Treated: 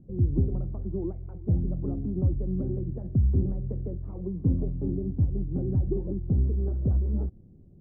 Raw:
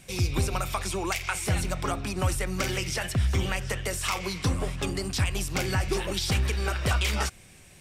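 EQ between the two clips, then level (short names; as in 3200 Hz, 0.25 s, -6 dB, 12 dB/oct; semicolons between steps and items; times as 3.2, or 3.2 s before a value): ladder low-pass 390 Hz, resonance 25%; +8.0 dB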